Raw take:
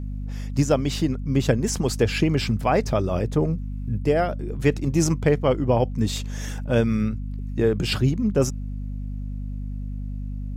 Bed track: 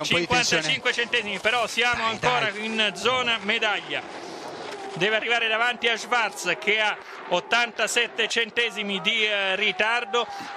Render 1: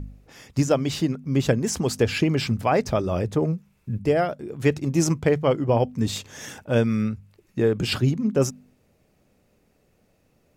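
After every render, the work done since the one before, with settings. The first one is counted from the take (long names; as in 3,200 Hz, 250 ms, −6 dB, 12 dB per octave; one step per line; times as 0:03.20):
hum removal 50 Hz, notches 5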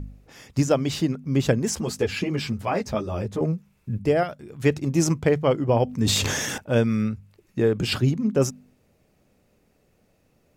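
0:01.75–0:03.41: string-ensemble chorus
0:04.23–0:04.64: parametric band 400 Hz −8.5 dB 2.2 octaves
0:05.85–0:06.58: level that may fall only so fast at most 21 dB per second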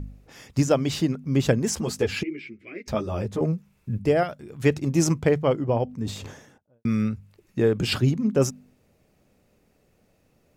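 0:02.23–0:02.88: pair of resonant band-passes 860 Hz, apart 2.7 octaves
0:05.11–0:06.85: fade out and dull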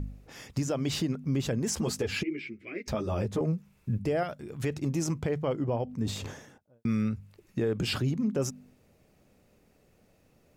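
downward compressor 2 to 1, threshold −26 dBFS, peak gain reduction 7 dB
brickwall limiter −20.5 dBFS, peak gain reduction 7.5 dB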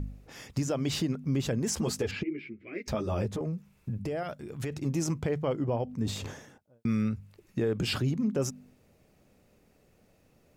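0:02.11–0:02.73: head-to-tape spacing loss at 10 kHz 22 dB
0:03.32–0:04.85: downward compressor, threshold −29 dBFS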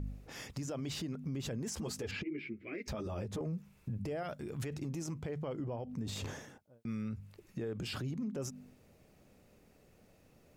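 downward compressor, threshold −32 dBFS, peak gain reduction 8 dB
brickwall limiter −31.5 dBFS, peak gain reduction 9 dB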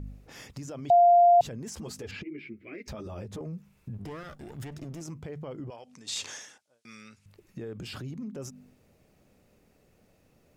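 0:00.90–0:01.41: beep over 698 Hz −14.5 dBFS
0:03.94–0:05.01: lower of the sound and its delayed copy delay 0.59 ms
0:05.70–0:07.26: meter weighting curve ITU-R 468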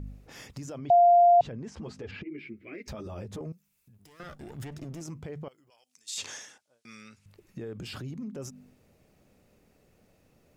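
0:00.78–0:02.31: Bessel low-pass filter 2,900 Hz
0:03.52–0:04.20: first-order pre-emphasis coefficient 0.9
0:05.48–0:06.18: first-order pre-emphasis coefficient 0.97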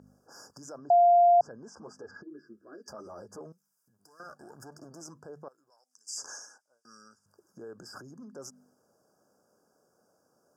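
brick-wall band-stop 1,700–4,700 Hz
meter weighting curve A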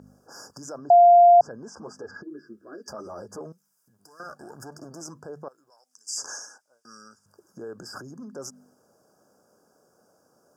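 level +6.5 dB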